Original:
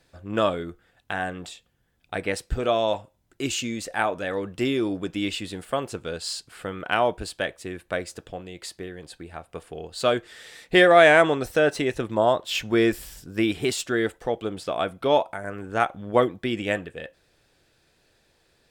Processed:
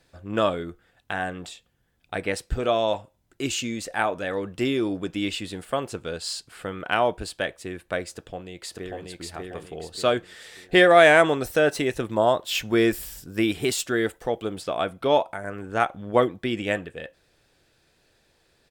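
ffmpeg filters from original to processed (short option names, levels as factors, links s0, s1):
-filter_complex "[0:a]asplit=2[s0][s1];[s1]afade=t=in:st=8.13:d=0.01,afade=t=out:st=9.08:d=0.01,aecho=0:1:590|1180|1770|2360|2950:0.841395|0.336558|0.134623|0.0538493|0.0215397[s2];[s0][s2]amix=inputs=2:normalize=0,asettb=1/sr,asplit=3[s3][s4][s5];[s3]atrim=end=10.894[s6];[s4]atrim=start=10.89:end=14.62,asetpts=PTS-STARTPTS,afade=t=in:d=0.004:c=qsin,afade=t=out:st=3.726:d=0.004:c=qsin,highshelf=f=11000:g=10[s7];[s5]atrim=start=14.616[s8];[s6][s7]acrossfade=d=0.004:c1=hsin:c2=qsin[s9];[s9][s8]acrossfade=d=0.004:c1=qsin:c2=hsin"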